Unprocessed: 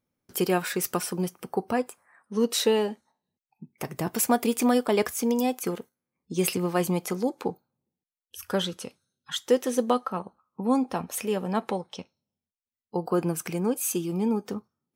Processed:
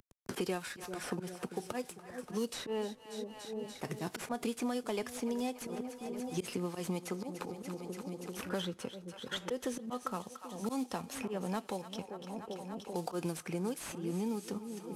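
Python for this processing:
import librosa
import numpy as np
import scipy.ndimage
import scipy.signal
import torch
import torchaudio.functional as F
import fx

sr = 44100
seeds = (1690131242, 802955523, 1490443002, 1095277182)

p1 = fx.cvsd(x, sr, bps=64000)
p2 = fx.auto_swell(p1, sr, attack_ms=141.0)
p3 = p2 + fx.echo_split(p2, sr, split_hz=680.0, low_ms=392, high_ms=289, feedback_pct=52, wet_db=-16, dry=0)
p4 = fx.band_squash(p3, sr, depth_pct=100)
y = p4 * librosa.db_to_amplitude(-8.5)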